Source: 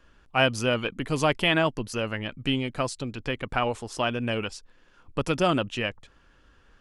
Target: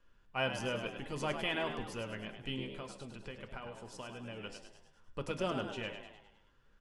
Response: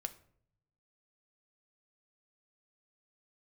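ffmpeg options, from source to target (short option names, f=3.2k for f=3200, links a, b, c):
-filter_complex "[0:a]asettb=1/sr,asplit=3[a][b][c];[a]atrim=end=2.644[d];[b]atrim=start=2.64:end=4.44,asetpts=PTS-STARTPTS,afade=t=in:d=0.004:c=qsin,afade=t=out:st=1.796:d=0.004:c=qsin,acompressor=threshold=-30dB:ratio=6[e];[c]atrim=start=4.436[f];[d][e]acrossfade=d=0.004:c1=hsin:c2=qsin[g];[g][f]acrossfade=d=0.004:c1=qsin:c2=hsin,asplit=7[h][i][j][k][l][m][n];[i]adelay=103,afreqshift=69,volume=-8dB[o];[j]adelay=206,afreqshift=138,volume=-13.7dB[p];[k]adelay=309,afreqshift=207,volume=-19.4dB[q];[l]adelay=412,afreqshift=276,volume=-25dB[r];[m]adelay=515,afreqshift=345,volume=-30.7dB[s];[n]adelay=618,afreqshift=414,volume=-36.4dB[t];[h][o][p][q][r][s][t]amix=inputs=7:normalize=0[u];[1:a]atrim=start_sample=2205,asetrate=70560,aresample=44100[v];[u][v]afir=irnorm=-1:irlink=0,volume=-7dB"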